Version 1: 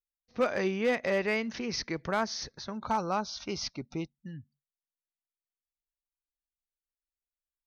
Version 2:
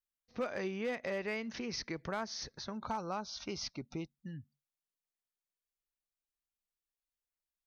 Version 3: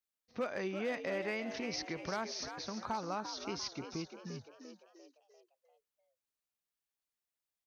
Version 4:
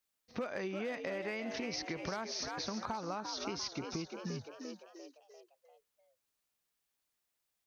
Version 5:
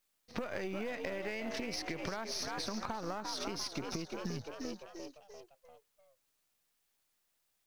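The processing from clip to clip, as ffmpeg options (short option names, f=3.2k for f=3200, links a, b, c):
-af "acompressor=threshold=-37dB:ratio=2,volume=-2dB"
-filter_complex "[0:a]highpass=f=97:p=1,asplit=2[a][b];[b]asplit=5[c][d][e][f][g];[c]adelay=346,afreqshift=80,volume=-9dB[h];[d]adelay=692,afreqshift=160,volume=-15.4dB[i];[e]adelay=1038,afreqshift=240,volume=-21.8dB[j];[f]adelay=1384,afreqshift=320,volume=-28.1dB[k];[g]adelay=1730,afreqshift=400,volume=-34.5dB[l];[h][i][j][k][l]amix=inputs=5:normalize=0[m];[a][m]amix=inputs=2:normalize=0"
-af "acompressor=threshold=-43dB:ratio=6,volume=7dB"
-af "aeval=exprs='if(lt(val(0),0),0.447*val(0),val(0))':c=same,acrusher=bits=8:mode=log:mix=0:aa=0.000001,acompressor=threshold=-42dB:ratio=6,volume=7.5dB"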